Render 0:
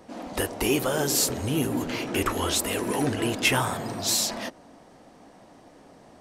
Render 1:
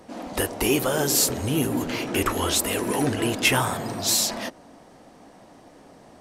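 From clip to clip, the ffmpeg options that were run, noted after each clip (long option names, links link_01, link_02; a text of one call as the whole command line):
ffmpeg -i in.wav -af "equalizer=frequency=13000:width_type=o:width=0.89:gain=2.5,volume=2dB" out.wav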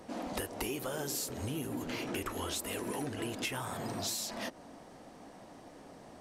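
ffmpeg -i in.wav -af "acompressor=threshold=-31dB:ratio=10,volume=-3dB" out.wav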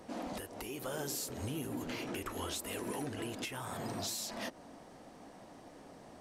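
ffmpeg -i in.wav -af "alimiter=level_in=2.5dB:limit=-24dB:level=0:latency=1:release=311,volume=-2.5dB,volume=-1.5dB" out.wav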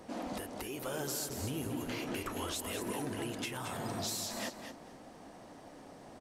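ffmpeg -i in.wav -af "aecho=1:1:223|446|669:0.398|0.0677|0.0115,volume=1dB" out.wav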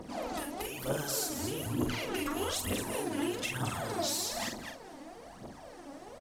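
ffmpeg -i in.wav -filter_complex "[0:a]aphaser=in_gain=1:out_gain=1:delay=3.7:decay=0.73:speed=1.1:type=triangular,asplit=2[link_01][link_02];[link_02]adelay=45,volume=-6dB[link_03];[link_01][link_03]amix=inputs=2:normalize=0" out.wav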